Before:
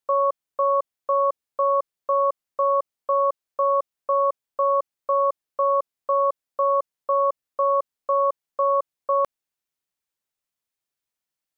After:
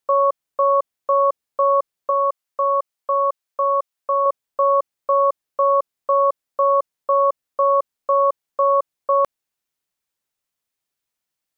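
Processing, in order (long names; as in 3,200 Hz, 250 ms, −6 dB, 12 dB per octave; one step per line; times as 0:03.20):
0:02.10–0:04.26: low-shelf EQ 460 Hz −8.5 dB
level +4 dB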